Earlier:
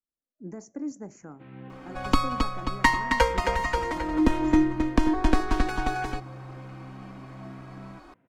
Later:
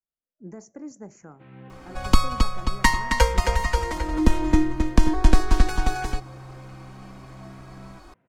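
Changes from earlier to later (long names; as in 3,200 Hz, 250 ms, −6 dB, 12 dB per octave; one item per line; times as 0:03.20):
second sound: add bass and treble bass +9 dB, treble +9 dB
master: add parametric band 280 Hz −7.5 dB 0.31 octaves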